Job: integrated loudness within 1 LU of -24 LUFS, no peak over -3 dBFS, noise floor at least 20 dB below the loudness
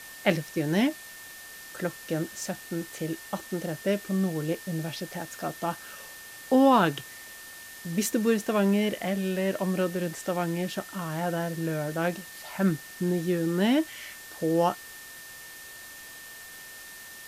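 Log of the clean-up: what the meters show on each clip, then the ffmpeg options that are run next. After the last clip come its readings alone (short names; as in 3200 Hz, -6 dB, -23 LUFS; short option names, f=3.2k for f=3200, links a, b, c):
steady tone 1800 Hz; tone level -46 dBFS; noise floor -45 dBFS; noise floor target -49 dBFS; loudness -28.5 LUFS; peak -8.5 dBFS; loudness target -24.0 LUFS
-> -af "bandreject=f=1.8k:w=30"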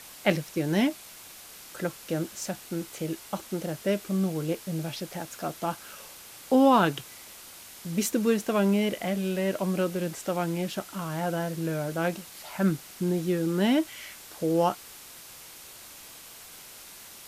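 steady tone none; noise floor -47 dBFS; noise floor target -49 dBFS
-> -af "afftdn=nr=6:nf=-47"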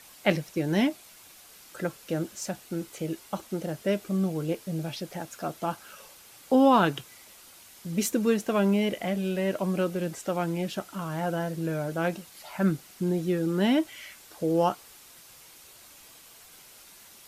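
noise floor -52 dBFS; loudness -28.5 LUFS; peak -9.0 dBFS; loudness target -24.0 LUFS
-> -af "volume=4.5dB"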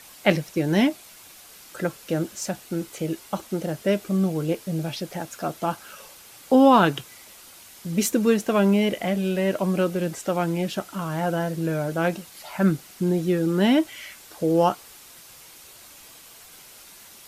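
loudness -24.0 LUFS; peak -4.5 dBFS; noise floor -47 dBFS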